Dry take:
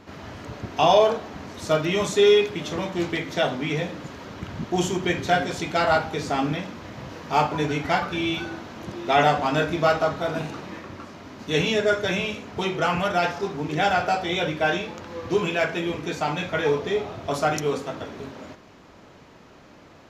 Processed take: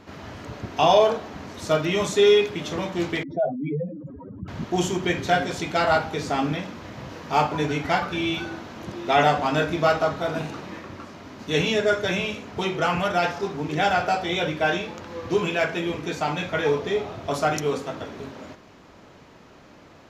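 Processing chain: 3.23–4.48 spectral contrast raised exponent 3.6

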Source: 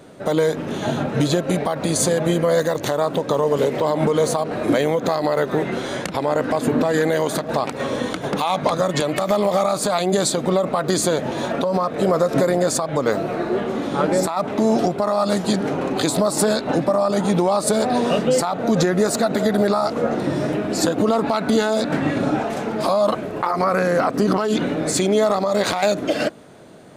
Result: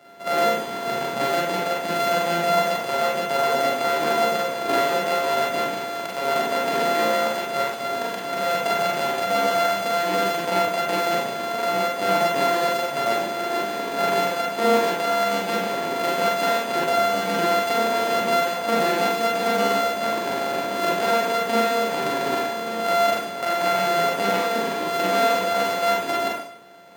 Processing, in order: sample sorter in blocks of 64 samples; HPF 80 Hz; tone controls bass -14 dB, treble -7 dB; notch 1200 Hz, Q 21; Schroeder reverb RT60 0.62 s, combs from 32 ms, DRR -3.5 dB; gain -6 dB

